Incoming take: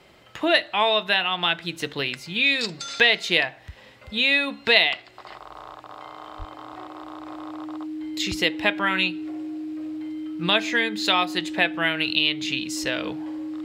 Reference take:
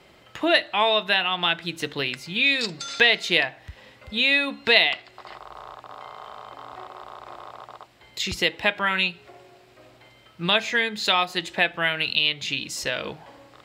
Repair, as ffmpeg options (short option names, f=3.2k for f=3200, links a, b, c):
-filter_complex "[0:a]bandreject=f=310:w=30,asplit=3[a][b][c];[a]afade=t=out:st=6.38:d=0.02[d];[b]highpass=f=140:w=0.5412,highpass=f=140:w=1.3066,afade=t=in:st=6.38:d=0.02,afade=t=out:st=6.5:d=0.02[e];[c]afade=t=in:st=6.5:d=0.02[f];[d][e][f]amix=inputs=3:normalize=0"